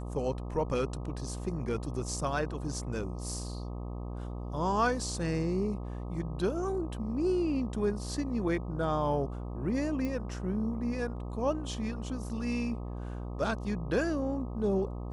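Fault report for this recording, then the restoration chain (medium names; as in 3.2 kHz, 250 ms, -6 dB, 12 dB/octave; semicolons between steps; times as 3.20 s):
buzz 60 Hz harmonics 21 -38 dBFS
10.05 s: pop -23 dBFS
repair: de-click; de-hum 60 Hz, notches 21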